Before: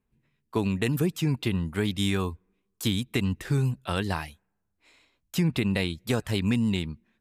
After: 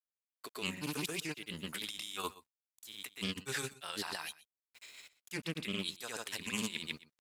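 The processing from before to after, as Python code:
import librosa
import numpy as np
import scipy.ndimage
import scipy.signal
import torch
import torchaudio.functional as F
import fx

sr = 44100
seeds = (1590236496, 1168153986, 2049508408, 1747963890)

y = fx.highpass(x, sr, hz=750.0, slope=6)
y = fx.tilt_eq(y, sr, slope=3.0)
y = fx.over_compress(y, sr, threshold_db=-39.0, ratio=-1.0)
y = fx.rotary_switch(y, sr, hz=0.85, then_hz=5.5, switch_at_s=2.93)
y = fx.granulator(y, sr, seeds[0], grain_ms=100.0, per_s=20.0, spray_ms=100.0, spread_st=0)
y = np.where(np.abs(y) >= 10.0 ** (-59.5 / 20.0), y, 0.0)
y = y + 10.0 ** (-19.0 / 20.0) * np.pad(y, (int(122 * sr / 1000.0), 0))[:len(y)]
y = fx.doppler_dist(y, sr, depth_ms=0.23)
y = y * librosa.db_to_amplitude(2.0)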